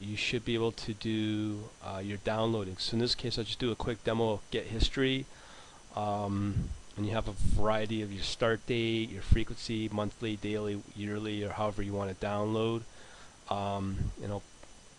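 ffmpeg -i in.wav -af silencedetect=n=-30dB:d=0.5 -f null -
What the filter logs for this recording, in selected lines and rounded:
silence_start: 5.21
silence_end: 5.97 | silence_duration: 0.76
silence_start: 12.78
silence_end: 13.51 | silence_duration: 0.74
silence_start: 14.37
silence_end: 14.99 | silence_duration: 0.61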